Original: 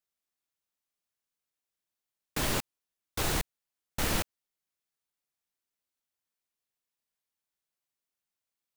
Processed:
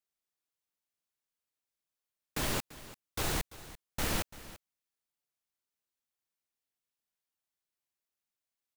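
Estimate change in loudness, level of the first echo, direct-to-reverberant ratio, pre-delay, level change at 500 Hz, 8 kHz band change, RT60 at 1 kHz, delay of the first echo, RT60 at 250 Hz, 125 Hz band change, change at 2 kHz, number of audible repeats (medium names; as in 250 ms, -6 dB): -3.0 dB, -17.0 dB, no reverb, no reverb, -3.0 dB, -3.0 dB, no reverb, 340 ms, no reverb, -3.0 dB, -3.0 dB, 1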